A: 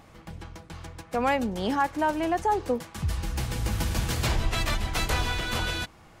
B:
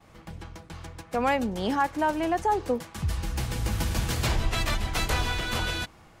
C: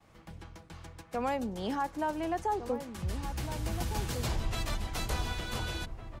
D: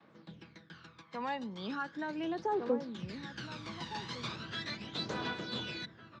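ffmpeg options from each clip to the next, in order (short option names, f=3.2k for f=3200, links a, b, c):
-af "agate=range=-33dB:threshold=-50dB:ratio=3:detection=peak"
-filter_complex "[0:a]acrossover=split=400|1300|3300[a][b][c][d];[c]alimiter=level_in=8.5dB:limit=-24dB:level=0:latency=1:release=443,volume=-8.5dB[e];[a][b][e][d]amix=inputs=4:normalize=0,asplit=2[f][g];[g]adelay=1458,volume=-9dB,highshelf=f=4k:g=-32.8[h];[f][h]amix=inputs=2:normalize=0,volume=-6.5dB"
-af "aphaser=in_gain=1:out_gain=1:delay=1.1:decay=0.61:speed=0.38:type=triangular,highpass=f=160:w=0.5412,highpass=f=160:w=1.3066,equalizer=f=750:t=q:w=4:g=-6,equalizer=f=1.6k:t=q:w=4:g=5,equalizer=f=3.8k:t=q:w=4:g=6,lowpass=f=5.1k:w=0.5412,lowpass=f=5.1k:w=1.3066,volume=-4.5dB"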